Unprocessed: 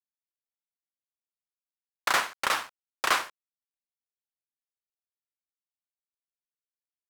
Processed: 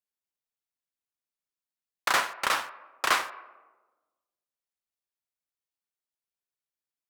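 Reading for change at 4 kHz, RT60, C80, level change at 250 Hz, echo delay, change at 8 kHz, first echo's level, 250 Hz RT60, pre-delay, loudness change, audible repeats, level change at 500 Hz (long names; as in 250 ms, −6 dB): 0.0 dB, 1.2 s, 16.0 dB, 0.0 dB, no echo audible, 0.0 dB, no echo audible, 1.4 s, 9 ms, +0.5 dB, no echo audible, +0.5 dB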